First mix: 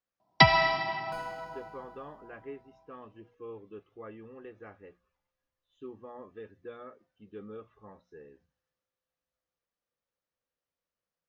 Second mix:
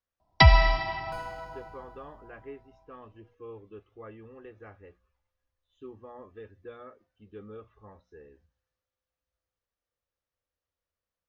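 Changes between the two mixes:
first sound: remove high-pass 130 Hz 12 dB/octave; master: add resonant low shelf 110 Hz +8.5 dB, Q 1.5

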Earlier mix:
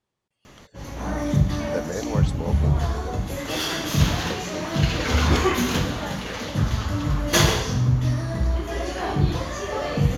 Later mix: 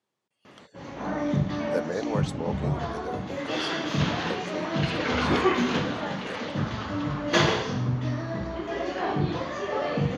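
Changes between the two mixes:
background: add distance through air 180 m; master: add high-pass 180 Hz 12 dB/octave

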